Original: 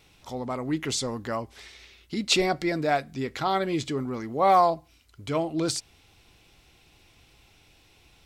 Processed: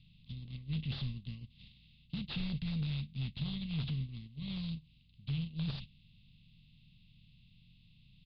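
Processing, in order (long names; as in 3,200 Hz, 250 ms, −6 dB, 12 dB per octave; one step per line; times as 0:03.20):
compressor on every frequency bin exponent 0.4
elliptic band-stop filter 170–3,100 Hz, stop band 40 dB
low-shelf EQ 260 Hz +5.5 dB
noise gate −29 dBFS, range −18 dB
soft clipping −22 dBFS, distortion −13 dB
high-frequency loss of the air 440 metres
downsampling to 11,025 Hz
level −4 dB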